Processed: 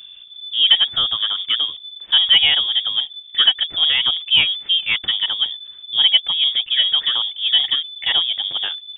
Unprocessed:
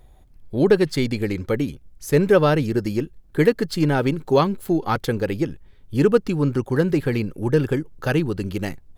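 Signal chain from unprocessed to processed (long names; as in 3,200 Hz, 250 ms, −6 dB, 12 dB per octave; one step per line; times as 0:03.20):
mu-law and A-law mismatch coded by mu
voice inversion scrambler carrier 3,500 Hz
level +1.5 dB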